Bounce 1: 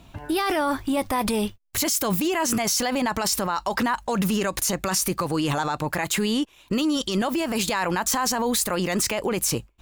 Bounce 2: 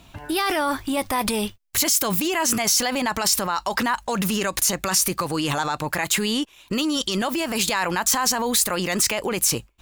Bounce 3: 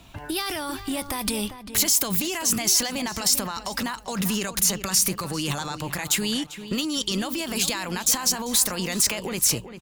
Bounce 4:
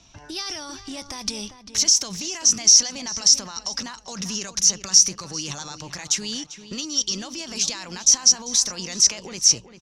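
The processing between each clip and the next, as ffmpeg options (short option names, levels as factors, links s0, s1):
-af "tiltshelf=f=1100:g=-3,volume=1.19"
-filter_complex "[0:a]acrossover=split=210|3000[s0][s1][s2];[s1]acompressor=threshold=0.0316:ratio=6[s3];[s0][s3][s2]amix=inputs=3:normalize=0,asplit=2[s4][s5];[s5]adelay=395,lowpass=f=2400:p=1,volume=0.299,asplit=2[s6][s7];[s7]adelay=395,lowpass=f=2400:p=1,volume=0.34,asplit=2[s8][s9];[s9]adelay=395,lowpass=f=2400:p=1,volume=0.34,asplit=2[s10][s11];[s11]adelay=395,lowpass=f=2400:p=1,volume=0.34[s12];[s4][s6][s8][s10][s12]amix=inputs=5:normalize=0"
-af "lowpass=f=5800:t=q:w=11,volume=0.447"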